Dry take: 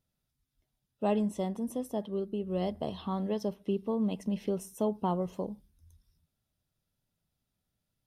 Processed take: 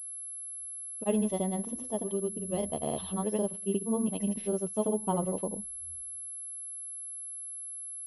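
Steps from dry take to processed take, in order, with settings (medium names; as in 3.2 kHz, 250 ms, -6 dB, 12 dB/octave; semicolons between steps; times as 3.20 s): granulator, pitch spread up and down by 0 st; class-D stage that switches slowly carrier 11 kHz; trim +2 dB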